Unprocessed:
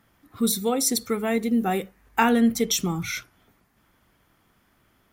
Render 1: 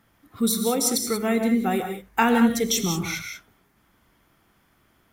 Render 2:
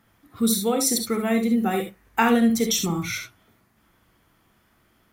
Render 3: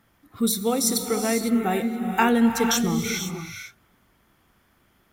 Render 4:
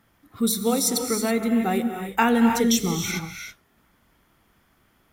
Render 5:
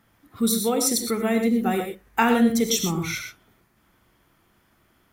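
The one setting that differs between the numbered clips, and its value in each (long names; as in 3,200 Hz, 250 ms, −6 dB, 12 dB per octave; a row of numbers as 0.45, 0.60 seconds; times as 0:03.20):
reverb whose tail is shaped and stops, gate: 210, 90, 530, 350, 140 milliseconds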